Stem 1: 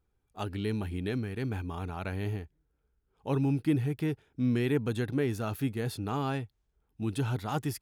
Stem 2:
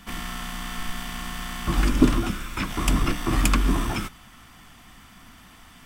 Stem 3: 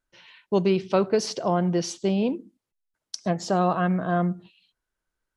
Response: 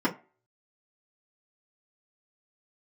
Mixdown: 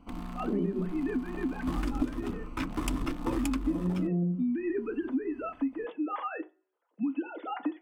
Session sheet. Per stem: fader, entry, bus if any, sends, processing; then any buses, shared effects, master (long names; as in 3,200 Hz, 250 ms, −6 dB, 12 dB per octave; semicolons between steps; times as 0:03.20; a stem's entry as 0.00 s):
−4.0 dB, 0.00 s, send −9.5 dB, three sine waves on the formant tracks; Bessel high-pass filter 340 Hz; multiband upward and downward compressor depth 40%
−5.0 dB, 0.00 s, send −20 dB, adaptive Wiener filter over 25 samples
−2.0 dB, 0.00 s, muted 0:00.86–0:03.70, send −5 dB, spectrum smeared in time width 117 ms; inverse Chebyshev low-pass filter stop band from 1,500 Hz, stop band 60 dB; spectral tilt +2 dB per octave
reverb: on, RT60 0.35 s, pre-delay 3 ms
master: downward compressor 6 to 1, threshold −27 dBFS, peak gain reduction 16 dB